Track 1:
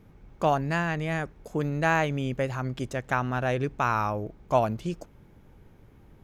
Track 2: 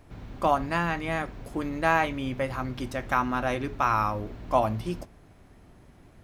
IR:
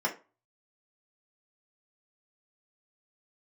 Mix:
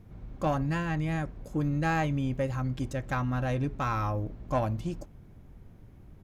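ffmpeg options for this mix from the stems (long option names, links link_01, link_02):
-filter_complex "[0:a]bass=frequency=250:gain=9,treble=frequency=4000:gain=3,asoftclip=type=tanh:threshold=-14.5dB,volume=-5.5dB[link_01];[1:a]tiltshelf=frequency=1200:gain=5.5,volume=-1,adelay=0.7,volume=-11.5dB[link_02];[link_01][link_02]amix=inputs=2:normalize=0,bandreject=frequency=860:width=28"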